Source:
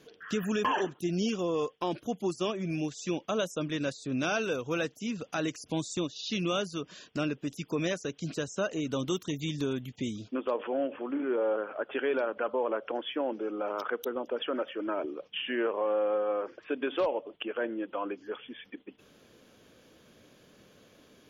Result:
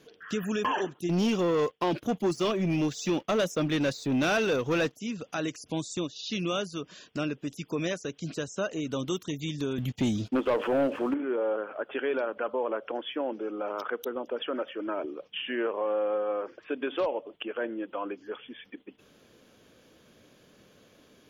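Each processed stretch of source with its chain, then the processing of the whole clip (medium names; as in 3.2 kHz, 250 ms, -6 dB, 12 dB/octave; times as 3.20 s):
1.09–4.93 s: waveshaping leveller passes 2 + peaking EQ 8.4 kHz -7.5 dB 0.61 oct
9.78–11.14 s: bass shelf 170 Hz +5.5 dB + waveshaping leveller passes 2
whole clip: none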